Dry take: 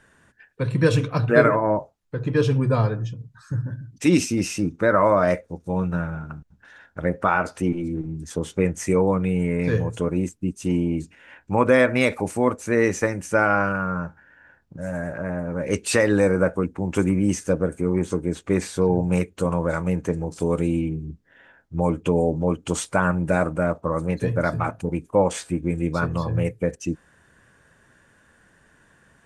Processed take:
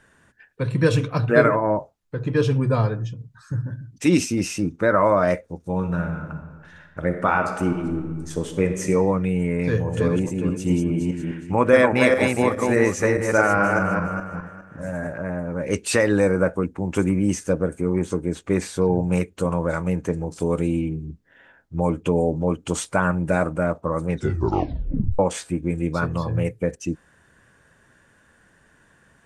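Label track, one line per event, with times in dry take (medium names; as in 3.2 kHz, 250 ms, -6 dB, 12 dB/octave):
5.750000	8.880000	reverb throw, RT60 1.6 s, DRR 6 dB
9.670000	15.070000	backward echo that repeats 206 ms, feedback 45%, level -3 dB
24.080000	24.080000	tape stop 1.11 s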